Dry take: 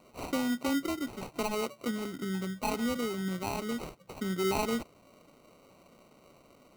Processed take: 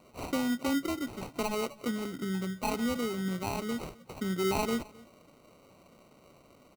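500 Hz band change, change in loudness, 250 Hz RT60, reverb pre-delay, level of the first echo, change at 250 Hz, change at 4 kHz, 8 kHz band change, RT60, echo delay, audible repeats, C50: 0.0 dB, +0.5 dB, no reverb, no reverb, -23.0 dB, +0.5 dB, 0.0 dB, 0.0 dB, no reverb, 262 ms, 1, no reverb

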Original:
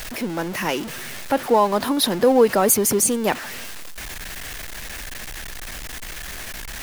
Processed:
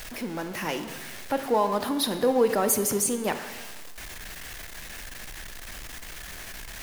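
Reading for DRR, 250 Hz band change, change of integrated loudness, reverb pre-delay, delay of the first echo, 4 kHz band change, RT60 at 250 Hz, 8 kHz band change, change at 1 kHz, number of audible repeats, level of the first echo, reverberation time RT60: 8.5 dB, -6.5 dB, -6.5 dB, 13 ms, no echo, -6.5 dB, 1.2 s, -6.5 dB, -6.5 dB, no echo, no echo, 1.2 s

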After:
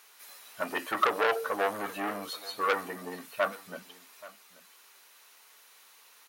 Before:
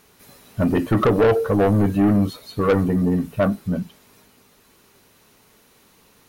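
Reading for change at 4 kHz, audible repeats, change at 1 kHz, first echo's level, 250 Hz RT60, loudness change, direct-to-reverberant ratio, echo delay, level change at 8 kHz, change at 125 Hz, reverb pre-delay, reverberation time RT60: 0.0 dB, 1, -3.0 dB, -19.5 dB, no reverb, -11.5 dB, no reverb, 829 ms, no reading, -32.5 dB, no reverb, no reverb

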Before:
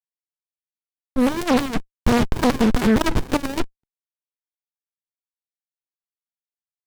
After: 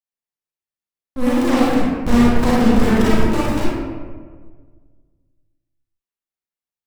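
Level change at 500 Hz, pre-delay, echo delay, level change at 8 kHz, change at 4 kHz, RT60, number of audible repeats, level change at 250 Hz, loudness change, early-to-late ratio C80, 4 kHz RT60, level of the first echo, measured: +3.5 dB, 33 ms, no echo, 0.0 dB, +0.5 dB, 1.6 s, no echo, +4.5 dB, +4.0 dB, 0.0 dB, 0.85 s, no echo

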